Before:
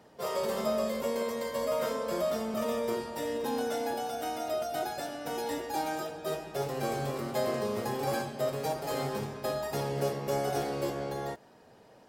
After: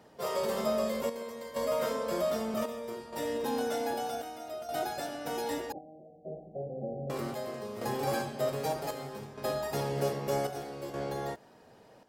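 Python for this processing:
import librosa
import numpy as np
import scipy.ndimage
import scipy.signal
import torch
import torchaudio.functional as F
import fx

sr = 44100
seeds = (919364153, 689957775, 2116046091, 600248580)

y = fx.chopper(x, sr, hz=0.64, depth_pct=60, duty_pct=70)
y = fx.cheby_ripple(y, sr, hz=770.0, ripple_db=9, at=(5.72, 7.1))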